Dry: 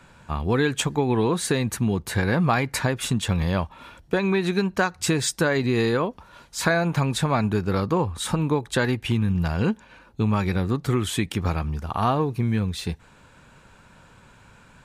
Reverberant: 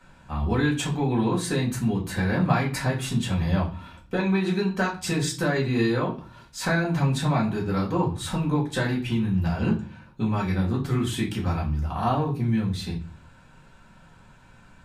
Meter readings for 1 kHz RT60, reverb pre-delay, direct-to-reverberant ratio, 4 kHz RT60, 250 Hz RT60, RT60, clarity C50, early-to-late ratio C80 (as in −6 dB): 0.40 s, 4 ms, −4.5 dB, 0.35 s, 0.65 s, 0.40 s, 11.0 dB, 16.5 dB